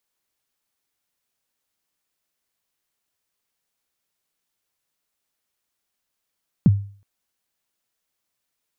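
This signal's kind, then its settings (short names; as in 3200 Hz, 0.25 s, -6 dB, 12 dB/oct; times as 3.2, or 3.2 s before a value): kick drum length 0.37 s, from 230 Hz, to 100 Hz, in 32 ms, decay 0.44 s, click off, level -7 dB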